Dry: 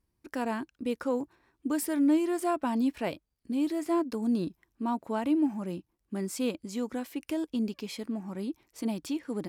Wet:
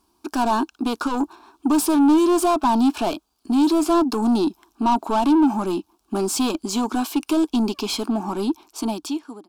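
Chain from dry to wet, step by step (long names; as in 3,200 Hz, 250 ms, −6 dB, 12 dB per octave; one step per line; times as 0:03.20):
fade-out on the ending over 1.19 s
mid-hump overdrive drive 25 dB, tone 3,800 Hz, clips at −15.5 dBFS
phaser with its sweep stopped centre 520 Hz, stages 6
level +6.5 dB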